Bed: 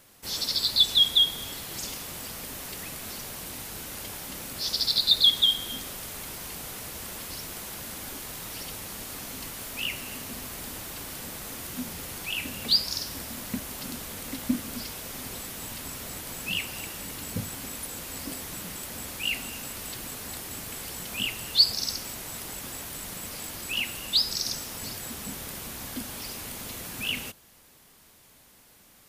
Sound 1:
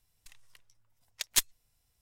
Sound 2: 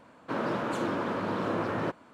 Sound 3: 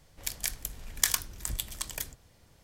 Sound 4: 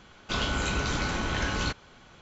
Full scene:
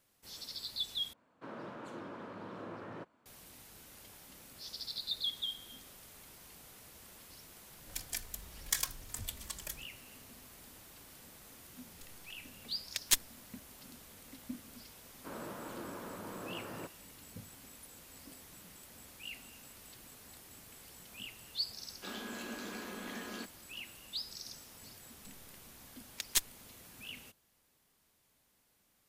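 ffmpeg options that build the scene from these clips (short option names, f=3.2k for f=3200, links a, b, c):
-filter_complex "[2:a]asplit=2[a][b];[1:a]asplit=2[c][d];[0:a]volume=-17dB[e];[3:a]asplit=2[f][g];[g]adelay=3.2,afreqshift=-0.97[h];[f][h]amix=inputs=2:normalize=1[i];[4:a]afreqshift=170[j];[e]asplit=2[k][l];[k]atrim=end=1.134[m];[a]atrim=end=2.13,asetpts=PTS-STARTPTS,volume=-15.5dB[n];[l]atrim=start=3.256[o];[i]atrim=end=2.63,asetpts=PTS-STARTPTS,volume=-4dB,afade=t=in:d=0.004:c=hsin,afade=t=out:st=2.626:d=0.004:c=hsin,adelay=7690[p];[c]atrim=end=2.01,asetpts=PTS-STARTPTS,volume=-2dB,afade=t=in:d=0.004:c=hsin,afade=t=out:st=2.006:d=0.004:c=hsin,adelay=11750[q];[b]atrim=end=2.13,asetpts=PTS-STARTPTS,volume=-14.5dB,afade=t=in:d=0.004:c=hsin,afade=t=out:st=2.126:d=0.004:c=hsin,adelay=14960[r];[j]atrim=end=2.21,asetpts=PTS-STARTPTS,volume=-15.5dB,afade=t=in:d=0.004:c=hsin,afade=t=out:st=2.206:d=0.004:c=hsin,adelay=21730[s];[d]atrim=end=2.01,asetpts=PTS-STARTPTS,volume=-4.5dB,afade=t=in:d=0.004:c=hsin,afade=t=out:st=2.006:d=0.004:c=hsin,adelay=24990[t];[m][n]acrossfade=d=0.004:c1=hsin:c2=hsin[u];[u][o]acrossfade=d=0.004:c1=hsin:c2=hsin[v];[v][p][q][r][s][t]amix=inputs=6:normalize=0"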